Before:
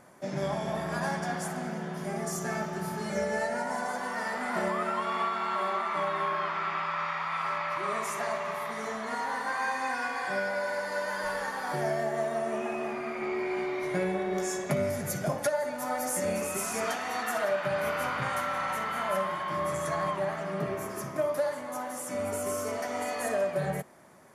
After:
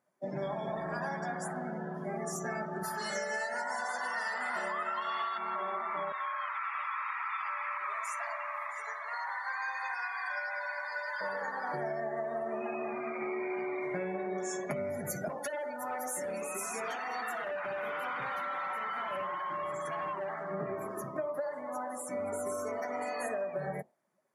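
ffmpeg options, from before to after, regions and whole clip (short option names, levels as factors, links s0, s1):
-filter_complex "[0:a]asettb=1/sr,asplit=3[s0][s1][s2];[s0]atrim=end=2.834[s3];[s1]atrim=start=2.83:end=5.38,asetpts=PTS-STARTPTS,afade=t=in:d=0.004:c=qsin,afade=t=out:st=2.546:d=0.004:c=qsin,asuperstop=centerf=2300:order=4:qfactor=7.8,tiltshelf=f=670:g=-8.5[s4];[s2]atrim=start=5.376[s5];[s3][s4]acrossfade=d=0.004:c1=hsin:c2=qsin[s6];[s6][s5]acrossfade=d=0.004:c1=qsin:c2=hsin,asettb=1/sr,asplit=3[s7][s8][s9];[s7]atrim=end=6.124[s10];[s8]atrim=start=6.12:end=11.21,asetpts=PTS-STARTPTS,afade=t=in:d=0.004:c=qsin,afade=t=out:st=5.086:d=0.004:c=qsin,highpass=1100,aecho=1:1:666:0.422,atrim=end_sample=224469[s11];[s9]atrim=start=11.206[s12];[s10][s11]acrossfade=d=0.004:c1=hsin:c2=qsin[s13];[s13][s12]acrossfade=d=0.004:c1=qsin:c2=hsin,asettb=1/sr,asplit=3[s14][s15][s16];[s14]atrim=end=15.284[s17];[s15]atrim=start=15.28:end=20.51,asetpts=PTS-STARTPTS,afade=t=in:d=0.004:c=qsin,afade=t=out:st=5.226:d=0.004:c=qsin,highpass=f=270:p=1,asoftclip=type=hard:threshold=0.0299,bandreject=f=630:w=9.2[s18];[s16]atrim=start=20.506[s19];[s17][s18]acrossfade=d=0.004:c1=hsin:c2=qsin[s20];[s20][s19]acrossfade=d=0.004:c1=qsin:c2=hsin,afftdn=nr=24:nf=-40,highpass=f=210:p=1,acompressor=threshold=0.0251:ratio=6"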